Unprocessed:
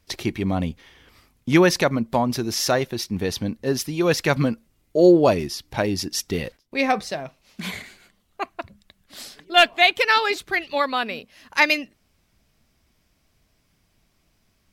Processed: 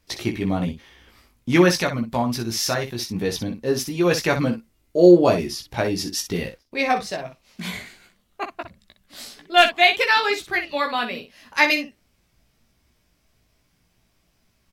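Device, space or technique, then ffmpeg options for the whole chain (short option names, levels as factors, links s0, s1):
slapback doubling: -filter_complex "[0:a]asplit=3[s0][s1][s2];[s1]adelay=17,volume=0.631[s3];[s2]adelay=62,volume=0.335[s4];[s0][s3][s4]amix=inputs=3:normalize=0,asettb=1/sr,asplit=3[s5][s6][s7];[s5]atrim=end=1.714[s8];[s6]atrim=start=1.71:end=2.99,asetpts=PTS-STARTPTS,afade=t=in:d=0.004:c=qsin,afade=t=out:st=1.276:d=0.004:c=qsin,equalizer=f=460:t=o:w=2.1:g=-5[s9];[s7]atrim=start=2.986[s10];[s8][s9]acrossfade=d=0.004:c1=hsin:c2=qsin[s11];[s11][s10]acrossfade=d=0.004:c1=qsin:c2=hsin,volume=0.841"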